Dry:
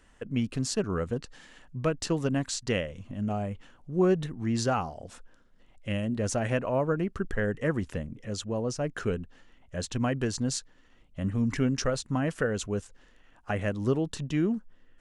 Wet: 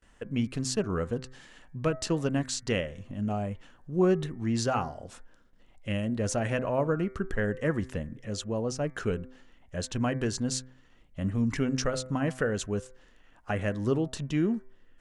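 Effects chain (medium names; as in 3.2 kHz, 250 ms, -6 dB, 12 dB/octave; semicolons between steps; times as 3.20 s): gate with hold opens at -52 dBFS; de-hum 128.5 Hz, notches 18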